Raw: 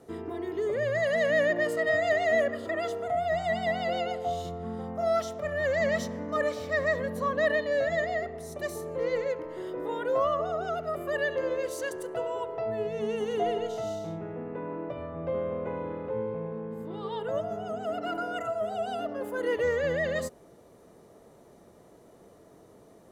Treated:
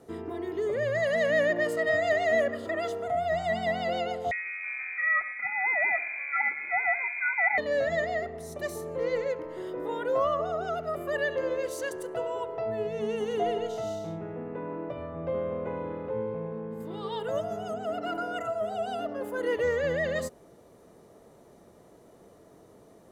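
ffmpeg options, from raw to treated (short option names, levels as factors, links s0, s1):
-filter_complex "[0:a]asettb=1/sr,asplit=3[s0][s1][s2];[s0]atrim=end=4.314[s3];[s1]atrim=start=4.31:end=7.58,asetpts=PTS-STARTPTS,afade=t=in:d=0.004:c=qsin,afade=t=out:st=3.266:d=0.004:c=qsin,lowpass=f=2200:t=q:w=0.5098,lowpass=f=2200:t=q:w=0.6013,lowpass=f=2200:t=q:w=0.9,lowpass=f=2200:t=q:w=2.563,afreqshift=-2600[s4];[s2]atrim=start=7.576[s5];[s3][s4]acrossfade=d=0.004:c1=hsin:c2=qsin[s6];[s6][s5]acrossfade=d=0.004:c1=qsin:c2=hsin,asettb=1/sr,asplit=3[s7][s8][s9];[s7]atrim=end=16.804[s10];[s8]atrim=start=16.8:end=17.74,asetpts=PTS-STARTPTS,afade=t=in:d=0.004:c=qsin,afade=t=out:st=0.936:d=0.004:c=qsin,highshelf=f=3500:g=8.5[s11];[s9]atrim=start=17.736[s12];[s10][s11]acrossfade=d=0.004:c1=hsin:c2=qsin[s13];[s13][s12]acrossfade=d=0.004:c1=qsin:c2=hsin"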